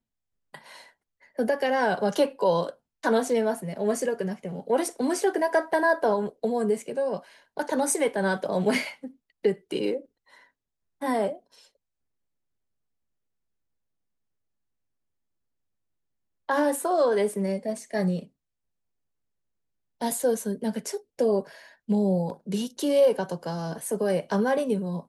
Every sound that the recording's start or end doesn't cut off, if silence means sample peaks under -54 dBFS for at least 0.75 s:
16.49–18.28

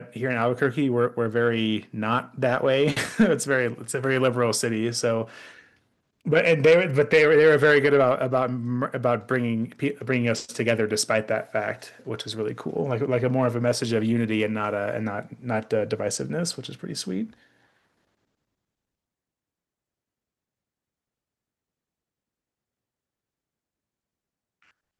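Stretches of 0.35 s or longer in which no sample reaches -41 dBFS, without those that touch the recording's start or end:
5.61–6.25

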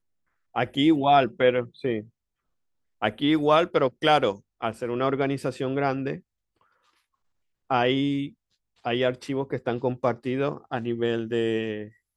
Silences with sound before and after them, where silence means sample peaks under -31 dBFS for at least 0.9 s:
2–3.02
6.15–7.71

